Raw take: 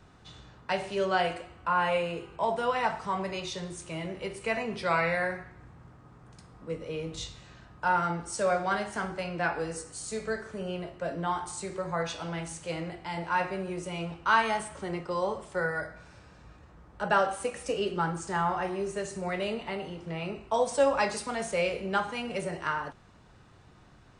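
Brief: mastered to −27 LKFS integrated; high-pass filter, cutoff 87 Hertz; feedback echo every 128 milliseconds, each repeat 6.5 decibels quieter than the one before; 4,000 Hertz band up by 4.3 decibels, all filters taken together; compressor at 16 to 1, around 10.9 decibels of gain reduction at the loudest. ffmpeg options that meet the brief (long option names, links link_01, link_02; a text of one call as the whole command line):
ffmpeg -i in.wav -af "highpass=87,equalizer=frequency=4000:width_type=o:gain=6,acompressor=threshold=-29dB:ratio=16,aecho=1:1:128|256|384|512|640|768:0.473|0.222|0.105|0.0491|0.0231|0.0109,volume=7dB" out.wav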